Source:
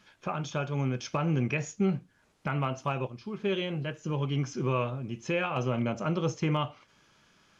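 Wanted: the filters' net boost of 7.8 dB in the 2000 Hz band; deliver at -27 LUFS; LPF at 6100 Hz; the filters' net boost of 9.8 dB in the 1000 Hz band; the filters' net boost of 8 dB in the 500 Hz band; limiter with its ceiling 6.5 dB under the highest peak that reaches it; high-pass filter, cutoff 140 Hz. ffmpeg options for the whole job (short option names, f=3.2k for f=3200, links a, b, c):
-af "highpass=140,lowpass=6.1k,equalizer=f=500:t=o:g=7.5,equalizer=f=1k:t=o:g=8,equalizer=f=2k:t=o:g=8,volume=1dB,alimiter=limit=-14dB:level=0:latency=1"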